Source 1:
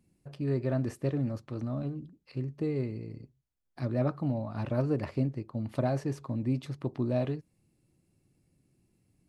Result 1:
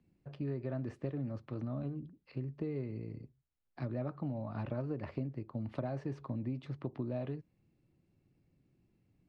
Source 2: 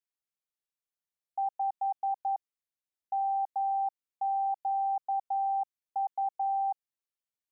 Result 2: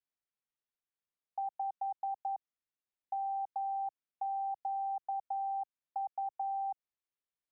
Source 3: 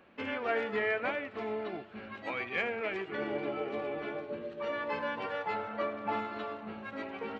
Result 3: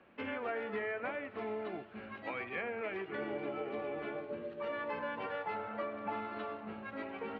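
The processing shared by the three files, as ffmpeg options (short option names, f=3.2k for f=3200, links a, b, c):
-filter_complex "[0:a]lowpass=3.3k,acrossover=split=100|490|2400[a][b][c][d];[d]alimiter=level_in=17dB:limit=-24dB:level=0:latency=1:release=362,volume=-17dB[e];[a][b][c][e]amix=inputs=4:normalize=0,acompressor=threshold=-32dB:ratio=6,volume=-2dB"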